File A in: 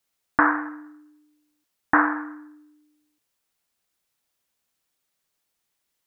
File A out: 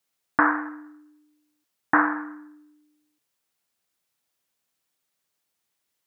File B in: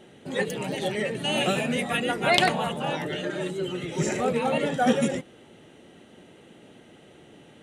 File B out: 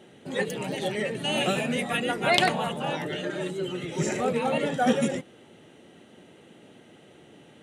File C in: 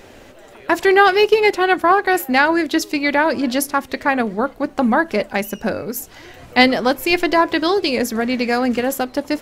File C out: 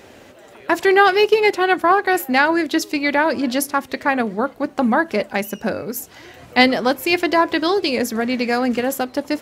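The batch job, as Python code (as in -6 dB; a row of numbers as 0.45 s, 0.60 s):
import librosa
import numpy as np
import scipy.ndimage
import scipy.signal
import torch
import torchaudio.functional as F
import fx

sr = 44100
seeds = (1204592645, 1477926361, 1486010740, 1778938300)

y = scipy.signal.sosfilt(scipy.signal.butter(2, 77.0, 'highpass', fs=sr, output='sos'), x)
y = F.gain(torch.from_numpy(y), -1.0).numpy()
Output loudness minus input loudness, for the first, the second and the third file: -1.0 LU, -1.0 LU, -1.0 LU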